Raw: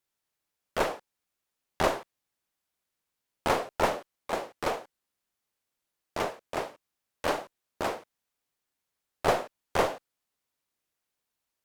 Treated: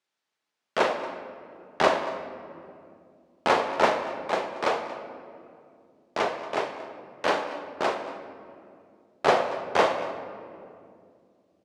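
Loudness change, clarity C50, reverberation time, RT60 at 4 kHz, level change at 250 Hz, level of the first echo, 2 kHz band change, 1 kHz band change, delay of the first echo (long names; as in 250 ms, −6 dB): +4.5 dB, 8.0 dB, 2.4 s, 1.3 s, +3.5 dB, −18.0 dB, +6.0 dB, +5.5 dB, 232 ms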